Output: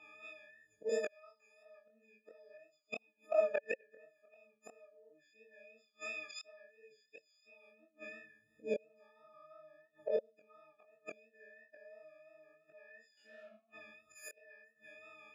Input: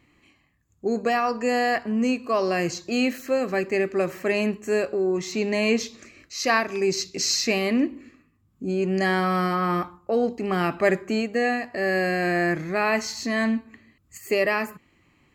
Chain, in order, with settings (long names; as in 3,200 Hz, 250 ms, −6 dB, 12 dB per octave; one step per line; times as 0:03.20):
every partial snapped to a pitch grid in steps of 6 semitones
0:00.89–0:01.63: spectral tilt +4.5 dB per octave
0:02.57–0:03.61: noise gate −21 dBFS, range −27 dB
volume swells 215 ms
brickwall limiter −13 dBFS, peak gain reduction 7 dB
0:13.17–0:13.57: leveller curve on the samples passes 3
four-comb reverb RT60 0.34 s, combs from 28 ms, DRR 10 dB
gate with flip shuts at −21 dBFS, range −41 dB
chorus effect 2.9 Hz, delay 19.5 ms, depth 5.1 ms
formant filter swept between two vowels a-e 0.65 Hz
level +14.5 dB